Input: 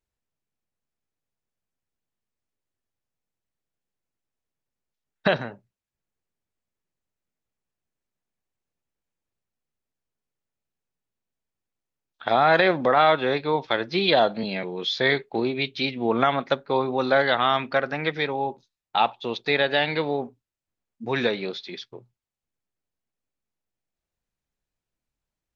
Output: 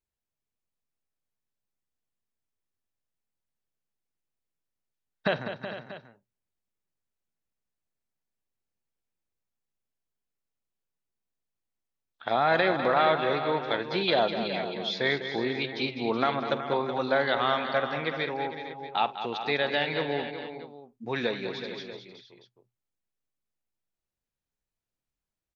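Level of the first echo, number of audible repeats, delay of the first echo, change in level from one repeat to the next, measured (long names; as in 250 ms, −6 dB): −18.0 dB, 5, 49 ms, repeats not evenly spaced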